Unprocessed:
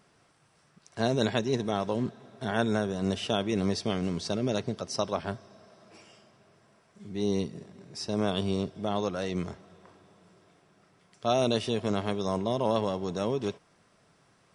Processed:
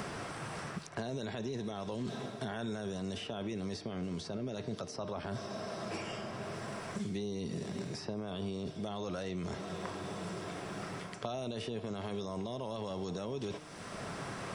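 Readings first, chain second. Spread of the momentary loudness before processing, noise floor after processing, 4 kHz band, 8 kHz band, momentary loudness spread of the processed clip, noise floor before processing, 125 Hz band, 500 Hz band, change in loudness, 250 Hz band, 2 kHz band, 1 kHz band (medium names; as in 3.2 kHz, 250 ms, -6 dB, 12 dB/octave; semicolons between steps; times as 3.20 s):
11 LU, -46 dBFS, -8.5 dB, -5.5 dB, 3 LU, -65 dBFS, -6.5 dB, -9.0 dB, -9.5 dB, -8.0 dB, -5.0 dB, -8.0 dB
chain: reverse; compression 6:1, threshold -39 dBFS, peak gain reduction 17 dB; reverse; de-hum 152.2 Hz, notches 38; peak limiter -38 dBFS, peak gain reduction 10.5 dB; three bands compressed up and down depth 100%; trim +9 dB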